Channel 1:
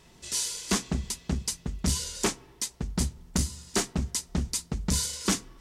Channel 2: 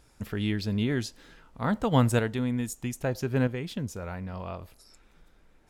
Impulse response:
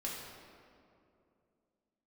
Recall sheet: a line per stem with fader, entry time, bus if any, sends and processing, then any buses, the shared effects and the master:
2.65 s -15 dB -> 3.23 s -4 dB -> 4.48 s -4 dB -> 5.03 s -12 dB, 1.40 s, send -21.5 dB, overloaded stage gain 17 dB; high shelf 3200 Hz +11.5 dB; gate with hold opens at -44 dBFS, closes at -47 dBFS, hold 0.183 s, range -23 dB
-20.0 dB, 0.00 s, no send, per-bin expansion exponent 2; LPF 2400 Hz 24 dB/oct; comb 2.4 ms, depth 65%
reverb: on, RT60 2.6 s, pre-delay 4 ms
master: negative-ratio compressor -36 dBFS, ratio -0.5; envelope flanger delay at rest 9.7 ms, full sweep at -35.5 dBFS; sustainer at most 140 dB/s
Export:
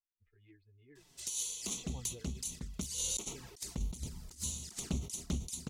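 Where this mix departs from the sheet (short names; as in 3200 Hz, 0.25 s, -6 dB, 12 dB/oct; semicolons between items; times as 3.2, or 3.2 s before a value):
stem 1: entry 1.40 s -> 0.95 s; stem 2 -20.0 dB -> -30.0 dB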